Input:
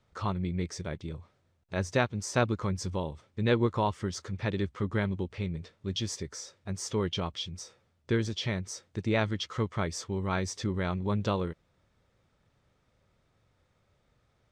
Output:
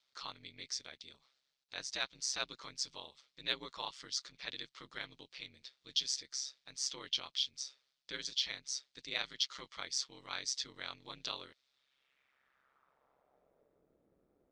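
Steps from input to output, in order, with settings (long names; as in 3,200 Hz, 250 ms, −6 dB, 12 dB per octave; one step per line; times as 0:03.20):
band-pass filter sweep 4,400 Hz → 350 Hz, 0:11.67–0:13.90
ring modulation 67 Hz
harmonic generator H 5 −37 dB, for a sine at −26.5 dBFS
level +9 dB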